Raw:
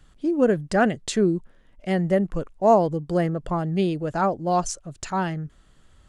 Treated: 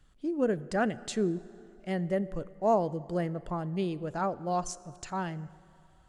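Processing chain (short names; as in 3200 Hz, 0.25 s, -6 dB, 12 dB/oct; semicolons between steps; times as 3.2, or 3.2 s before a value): plate-style reverb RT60 2.8 s, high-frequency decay 0.6×, DRR 17.5 dB; gain -8.5 dB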